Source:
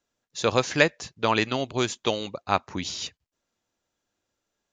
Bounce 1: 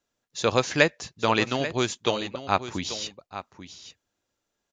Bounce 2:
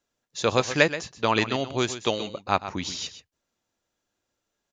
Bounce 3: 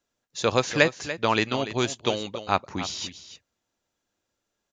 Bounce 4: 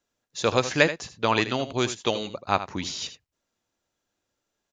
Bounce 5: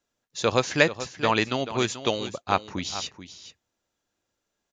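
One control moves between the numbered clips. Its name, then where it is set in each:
echo, time: 838, 127, 290, 80, 434 ms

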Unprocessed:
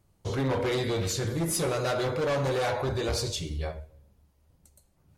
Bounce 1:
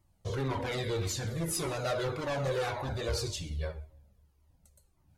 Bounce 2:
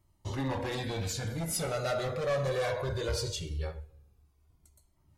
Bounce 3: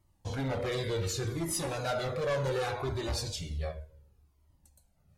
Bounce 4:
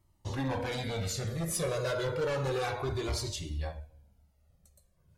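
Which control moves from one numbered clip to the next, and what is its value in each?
cascading flanger, rate: 1.8, 0.2, 0.67, 0.31 Hz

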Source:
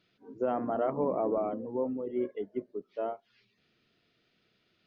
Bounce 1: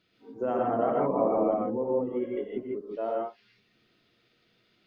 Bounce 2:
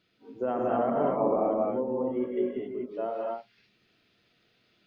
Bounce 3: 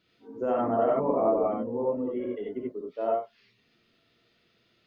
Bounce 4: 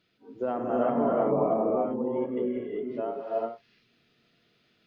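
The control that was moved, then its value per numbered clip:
non-linear reverb, gate: 0.18, 0.28, 0.11, 0.43 s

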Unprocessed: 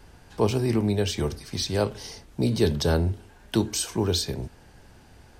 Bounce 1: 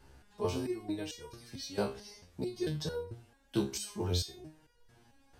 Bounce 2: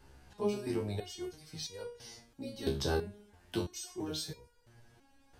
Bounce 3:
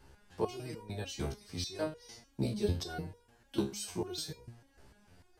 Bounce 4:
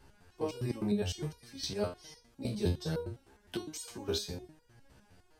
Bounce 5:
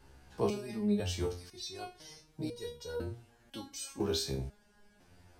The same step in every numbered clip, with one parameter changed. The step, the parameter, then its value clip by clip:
stepped resonator, rate: 4.5, 3, 6.7, 9.8, 2 Hz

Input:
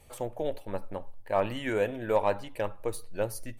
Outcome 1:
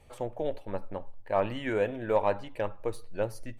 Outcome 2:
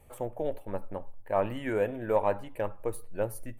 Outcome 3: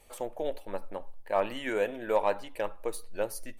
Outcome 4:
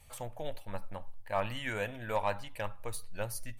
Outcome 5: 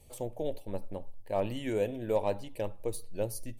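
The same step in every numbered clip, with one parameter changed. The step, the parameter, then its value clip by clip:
bell, frequency: 15000, 4800, 110, 370, 1400 Hz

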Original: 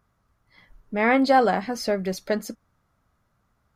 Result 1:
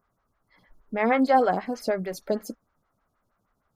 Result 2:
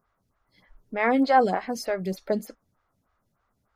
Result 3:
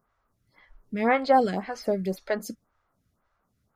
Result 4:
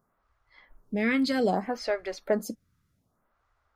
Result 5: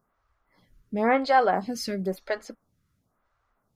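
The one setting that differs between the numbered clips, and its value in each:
photocell phaser, rate: 6.4, 3.3, 1.9, 0.64, 0.97 Hz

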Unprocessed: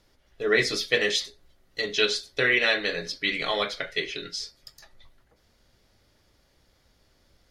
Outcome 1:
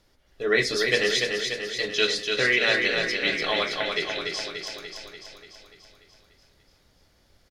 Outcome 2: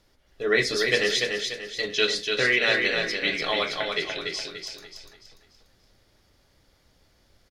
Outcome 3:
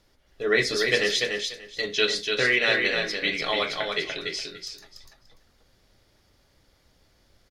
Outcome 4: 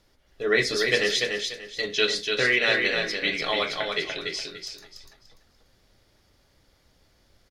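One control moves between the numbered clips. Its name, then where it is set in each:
feedback echo, feedback: 60, 39, 18, 26%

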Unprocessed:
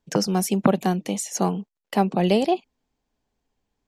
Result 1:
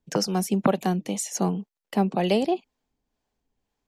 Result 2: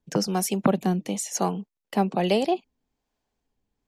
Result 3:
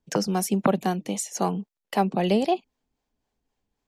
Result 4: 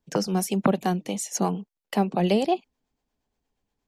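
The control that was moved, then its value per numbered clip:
harmonic tremolo, rate: 2, 1.1, 3.8, 8.5 Hz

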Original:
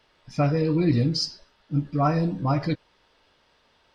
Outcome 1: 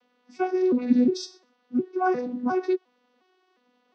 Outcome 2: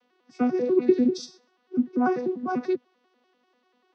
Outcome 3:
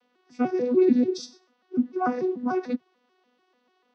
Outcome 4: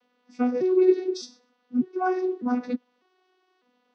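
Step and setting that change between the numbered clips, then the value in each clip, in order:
arpeggiated vocoder, a note every: 356, 98, 147, 602 ms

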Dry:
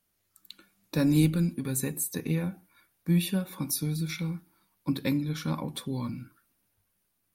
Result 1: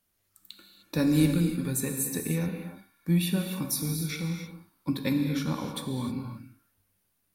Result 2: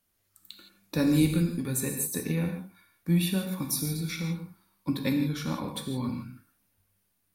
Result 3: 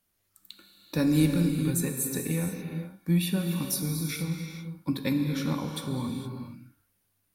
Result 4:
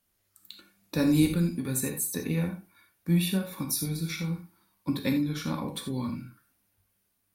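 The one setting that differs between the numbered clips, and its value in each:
non-linear reverb, gate: 0.33, 0.19, 0.49, 0.11 s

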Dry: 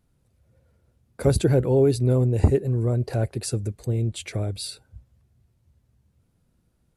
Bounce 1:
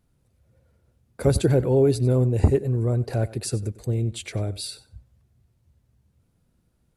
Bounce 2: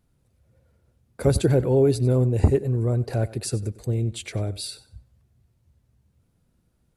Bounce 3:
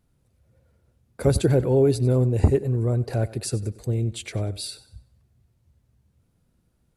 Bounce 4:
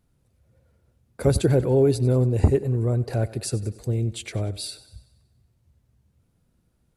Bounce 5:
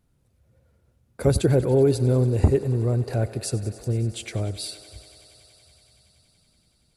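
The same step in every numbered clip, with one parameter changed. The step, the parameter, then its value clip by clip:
thinning echo, feedback: 15, 23, 35, 54, 89%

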